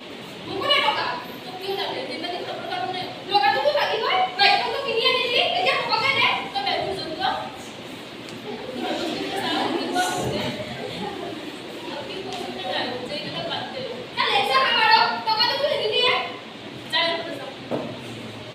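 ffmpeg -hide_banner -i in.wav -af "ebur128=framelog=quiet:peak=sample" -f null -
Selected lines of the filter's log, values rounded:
Integrated loudness:
  I:         -22.6 LUFS
  Threshold: -33.1 LUFS
Loudness range:
  LRA:         8.1 LU
  Threshold: -42.8 LUFS
  LRA low:   -28.0 LUFS
  LRA high:  -19.9 LUFS
Sample peak:
  Peak:       -2.6 dBFS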